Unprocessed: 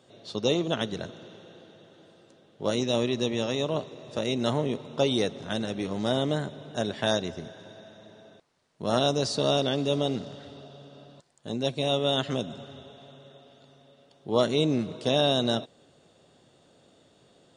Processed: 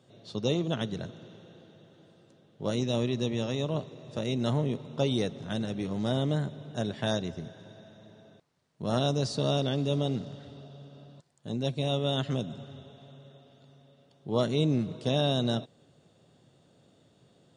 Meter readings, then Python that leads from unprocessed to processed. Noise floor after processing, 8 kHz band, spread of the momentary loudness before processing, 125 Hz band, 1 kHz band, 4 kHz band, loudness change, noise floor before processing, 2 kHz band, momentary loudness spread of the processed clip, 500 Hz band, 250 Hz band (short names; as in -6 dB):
-64 dBFS, -5.5 dB, 17 LU, +3.0 dB, -5.0 dB, -5.5 dB, -2.5 dB, -61 dBFS, -5.5 dB, 18 LU, -4.5 dB, -1.5 dB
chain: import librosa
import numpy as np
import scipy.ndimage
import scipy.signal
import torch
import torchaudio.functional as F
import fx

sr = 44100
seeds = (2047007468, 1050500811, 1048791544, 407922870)

y = fx.peak_eq(x, sr, hz=130.0, db=9.0, octaves=1.7)
y = F.gain(torch.from_numpy(y), -5.5).numpy()